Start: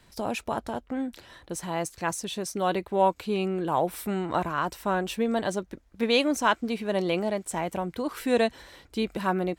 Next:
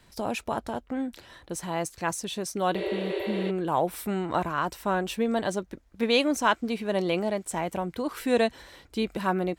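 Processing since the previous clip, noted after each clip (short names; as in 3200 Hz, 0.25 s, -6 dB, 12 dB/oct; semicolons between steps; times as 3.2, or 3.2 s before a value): spectral repair 2.79–3.48, 340–11000 Hz before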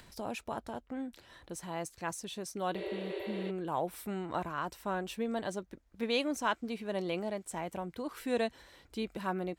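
upward compressor, threshold -39 dBFS; gain -8.5 dB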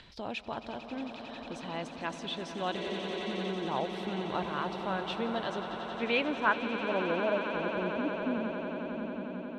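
ending faded out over 1.25 s; low-pass sweep 3600 Hz -> 190 Hz, 5.79–8.38; swelling echo 90 ms, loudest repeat 8, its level -13.5 dB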